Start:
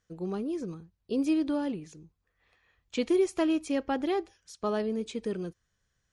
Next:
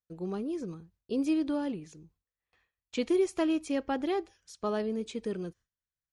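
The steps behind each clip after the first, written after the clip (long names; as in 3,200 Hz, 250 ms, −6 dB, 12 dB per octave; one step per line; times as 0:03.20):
noise gate with hold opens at −56 dBFS
level −1.5 dB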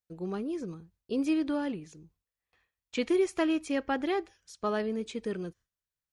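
dynamic equaliser 1,800 Hz, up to +6 dB, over −50 dBFS, Q 1.1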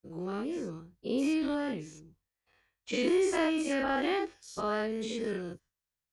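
every bin's largest magnitude spread in time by 120 ms
level −4 dB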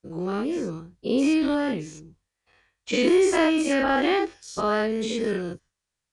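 downsampling to 22,050 Hz
level +8 dB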